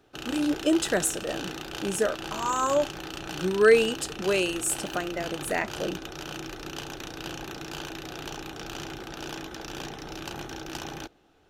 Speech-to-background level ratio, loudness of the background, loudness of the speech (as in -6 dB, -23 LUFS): 10.5 dB, -37.0 LUFS, -26.5 LUFS